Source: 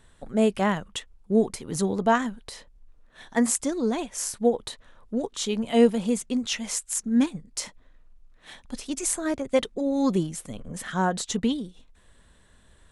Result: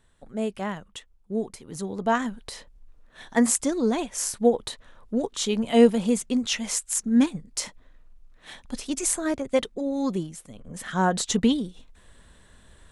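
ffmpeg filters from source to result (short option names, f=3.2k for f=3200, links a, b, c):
-af "volume=13.5dB,afade=t=in:st=1.89:d=0.53:silence=0.354813,afade=t=out:st=9.01:d=1.53:silence=0.334965,afade=t=in:st=10.54:d=0.71:silence=0.266073"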